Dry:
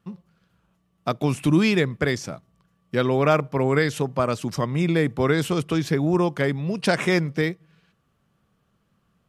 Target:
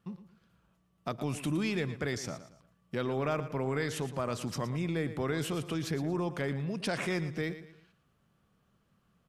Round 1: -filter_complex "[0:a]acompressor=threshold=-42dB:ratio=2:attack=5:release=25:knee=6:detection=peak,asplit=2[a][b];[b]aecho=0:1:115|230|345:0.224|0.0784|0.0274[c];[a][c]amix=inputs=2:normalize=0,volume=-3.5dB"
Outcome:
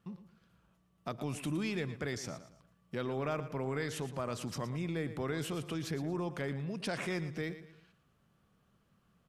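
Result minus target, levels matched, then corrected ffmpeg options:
compressor: peak gain reduction +4 dB
-filter_complex "[0:a]acompressor=threshold=-34.5dB:ratio=2:attack=5:release=25:knee=6:detection=peak,asplit=2[a][b];[b]aecho=0:1:115|230|345:0.224|0.0784|0.0274[c];[a][c]amix=inputs=2:normalize=0,volume=-3.5dB"

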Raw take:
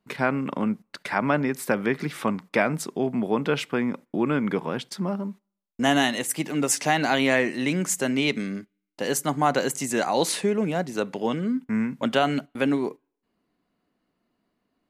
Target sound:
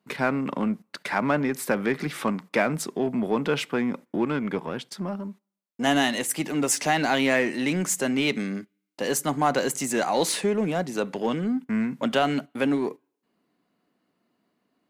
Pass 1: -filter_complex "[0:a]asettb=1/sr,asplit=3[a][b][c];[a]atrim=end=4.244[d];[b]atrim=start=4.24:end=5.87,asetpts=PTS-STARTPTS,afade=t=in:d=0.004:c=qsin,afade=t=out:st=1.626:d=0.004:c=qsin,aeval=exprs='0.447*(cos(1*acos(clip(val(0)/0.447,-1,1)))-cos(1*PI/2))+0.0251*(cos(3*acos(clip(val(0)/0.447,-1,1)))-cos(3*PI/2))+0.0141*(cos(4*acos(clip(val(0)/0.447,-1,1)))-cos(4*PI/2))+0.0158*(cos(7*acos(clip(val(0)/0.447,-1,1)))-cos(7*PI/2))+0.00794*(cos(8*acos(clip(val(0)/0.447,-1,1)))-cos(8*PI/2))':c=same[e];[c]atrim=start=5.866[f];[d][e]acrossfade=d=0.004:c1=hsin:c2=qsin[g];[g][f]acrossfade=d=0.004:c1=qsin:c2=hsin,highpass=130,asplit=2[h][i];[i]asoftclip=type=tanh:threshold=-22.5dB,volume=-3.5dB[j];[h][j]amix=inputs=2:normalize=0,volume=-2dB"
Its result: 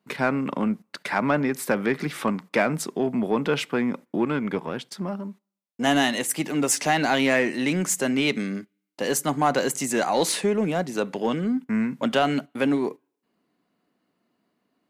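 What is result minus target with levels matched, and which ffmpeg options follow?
soft clip: distortion -4 dB
-filter_complex "[0:a]asettb=1/sr,asplit=3[a][b][c];[a]atrim=end=4.244[d];[b]atrim=start=4.24:end=5.87,asetpts=PTS-STARTPTS,afade=t=in:d=0.004:c=qsin,afade=t=out:st=1.626:d=0.004:c=qsin,aeval=exprs='0.447*(cos(1*acos(clip(val(0)/0.447,-1,1)))-cos(1*PI/2))+0.0251*(cos(3*acos(clip(val(0)/0.447,-1,1)))-cos(3*PI/2))+0.0141*(cos(4*acos(clip(val(0)/0.447,-1,1)))-cos(4*PI/2))+0.0158*(cos(7*acos(clip(val(0)/0.447,-1,1)))-cos(7*PI/2))+0.00794*(cos(8*acos(clip(val(0)/0.447,-1,1)))-cos(8*PI/2))':c=same[e];[c]atrim=start=5.866[f];[d][e]acrossfade=d=0.004:c1=hsin:c2=qsin[g];[g][f]acrossfade=d=0.004:c1=qsin:c2=hsin,highpass=130,asplit=2[h][i];[i]asoftclip=type=tanh:threshold=-30dB,volume=-3.5dB[j];[h][j]amix=inputs=2:normalize=0,volume=-2dB"

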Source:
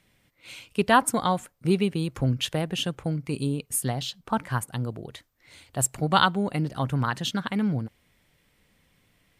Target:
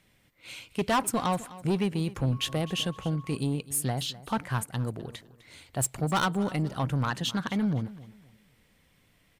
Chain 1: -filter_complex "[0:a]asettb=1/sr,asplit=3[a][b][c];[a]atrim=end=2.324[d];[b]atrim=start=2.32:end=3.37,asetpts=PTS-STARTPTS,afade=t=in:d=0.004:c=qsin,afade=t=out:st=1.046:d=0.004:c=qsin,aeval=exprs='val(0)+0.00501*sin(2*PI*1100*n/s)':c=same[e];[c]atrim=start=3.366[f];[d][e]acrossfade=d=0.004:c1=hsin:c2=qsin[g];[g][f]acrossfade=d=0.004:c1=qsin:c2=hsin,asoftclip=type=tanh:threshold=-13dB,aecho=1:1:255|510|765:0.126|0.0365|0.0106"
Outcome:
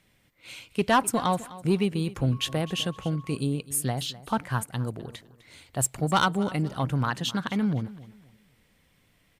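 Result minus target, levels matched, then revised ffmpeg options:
soft clip: distortion -7 dB
-filter_complex "[0:a]asettb=1/sr,asplit=3[a][b][c];[a]atrim=end=2.324[d];[b]atrim=start=2.32:end=3.37,asetpts=PTS-STARTPTS,afade=t=in:d=0.004:c=qsin,afade=t=out:st=1.046:d=0.004:c=qsin,aeval=exprs='val(0)+0.00501*sin(2*PI*1100*n/s)':c=same[e];[c]atrim=start=3.366[f];[d][e]acrossfade=d=0.004:c1=hsin:c2=qsin[g];[g][f]acrossfade=d=0.004:c1=qsin:c2=hsin,asoftclip=type=tanh:threshold=-20.5dB,aecho=1:1:255|510|765:0.126|0.0365|0.0106"

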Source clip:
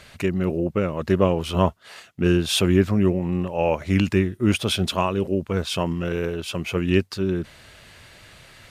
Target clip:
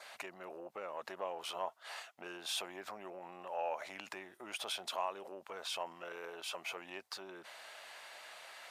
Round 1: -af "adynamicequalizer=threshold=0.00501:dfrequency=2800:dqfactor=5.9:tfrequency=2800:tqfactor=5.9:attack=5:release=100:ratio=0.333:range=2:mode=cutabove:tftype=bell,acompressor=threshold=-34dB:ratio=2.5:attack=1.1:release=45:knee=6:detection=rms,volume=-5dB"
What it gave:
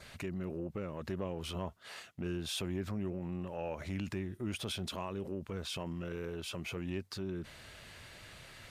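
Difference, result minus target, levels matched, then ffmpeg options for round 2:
1000 Hz band -9.0 dB
-af "adynamicequalizer=threshold=0.00501:dfrequency=2800:dqfactor=5.9:tfrequency=2800:tqfactor=5.9:attack=5:release=100:ratio=0.333:range=2:mode=cutabove:tftype=bell,acompressor=threshold=-34dB:ratio=2.5:attack=1.1:release=45:knee=6:detection=rms,highpass=f=750:t=q:w=2.2,volume=-5dB"

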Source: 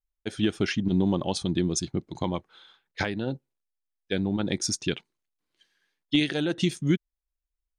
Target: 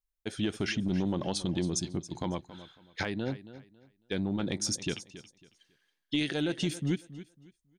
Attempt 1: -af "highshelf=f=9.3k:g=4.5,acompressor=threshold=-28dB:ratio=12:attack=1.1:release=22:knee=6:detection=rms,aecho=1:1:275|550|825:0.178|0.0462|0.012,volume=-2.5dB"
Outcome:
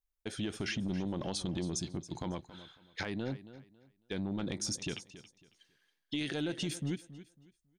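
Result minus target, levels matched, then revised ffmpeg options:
compressor: peak gain reduction +7 dB
-af "highshelf=f=9.3k:g=4.5,acompressor=threshold=-20.5dB:ratio=12:attack=1.1:release=22:knee=6:detection=rms,aecho=1:1:275|550|825:0.178|0.0462|0.012,volume=-2.5dB"

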